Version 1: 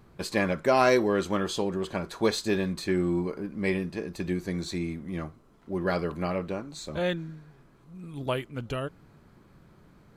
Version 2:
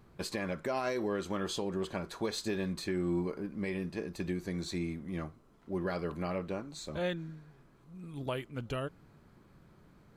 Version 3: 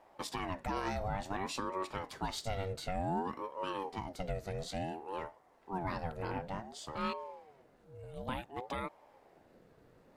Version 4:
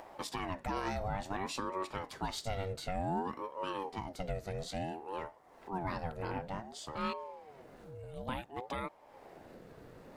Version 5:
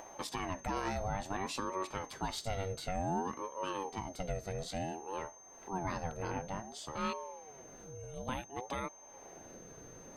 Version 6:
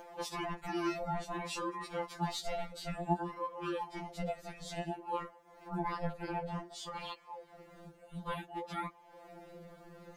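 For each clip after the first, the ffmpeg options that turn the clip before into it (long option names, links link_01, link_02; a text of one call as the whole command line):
ffmpeg -i in.wav -af "alimiter=limit=-20dB:level=0:latency=1:release=156,volume=-4dB" out.wav
ffmpeg -i in.wav -af "aeval=exprs='val(0)*sin(2*PI*520*n/s+520*0.45/0.56*sin(2*PI*0.56*n/s))':channel_layout=same" out.wav
ffmpeg -i in.wav -af "acompressor=mode=upward:threshold=-42dB:ratio=2.5" out.wav
ffmpeg -i in.wav -af "aeval=exprs='val(0)+0.00178*sin(2*PI*6300*n/s)':channel_layout=same" out.wav
ffmpeg -i in.wav -af "afftfilt=real='re*2.83*eq(mod(b,8),0)':imag='im*2.83*eq(mod(b,8),0)':win_size=2048:overlap=0.75,volume=2.5dB" out.wav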